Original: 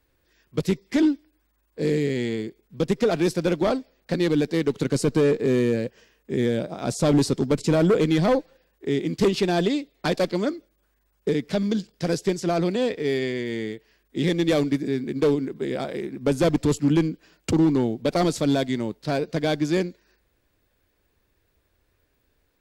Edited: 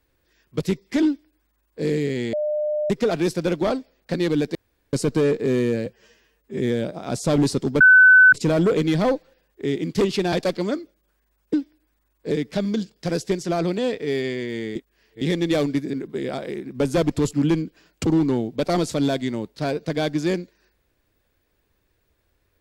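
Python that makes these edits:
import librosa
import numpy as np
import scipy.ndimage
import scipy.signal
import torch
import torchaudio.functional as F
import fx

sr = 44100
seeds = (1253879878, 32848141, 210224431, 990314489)

y = fx.edit(x, sr, fx.duplicate(start_s=1.06, length_s=0.77, to_s=11.28),
    fx.bleep(start_s=2.33, length_s=0.57, hz=602.0, db=-20.5),
    fx.room_tone_fill(start_s=4.55, length_s=0.38),
    fx.stretch_span(start_s=5.86, length_s=0.49, factor=1.5),
    fx.insert_tone(at_s=7.56, length_s=0.52, hz=1510.0, db=-7.5),
    fx.cut(start_s=9.56, length_s=0.51),
    fx.reverse_span(start_s=13.73, length_s=0.46),
    fx.cut(start_s=14.91, length_s=0.49), tone=tone)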